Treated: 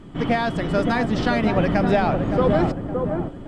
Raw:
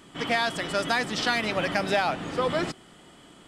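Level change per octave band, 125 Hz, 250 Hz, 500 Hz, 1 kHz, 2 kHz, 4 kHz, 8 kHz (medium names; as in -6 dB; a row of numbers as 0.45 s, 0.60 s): +14.0 dB, +12.0 dB, +7.5 dB, +4.0 dB, -0.5 dB, -5.0 dB, no reading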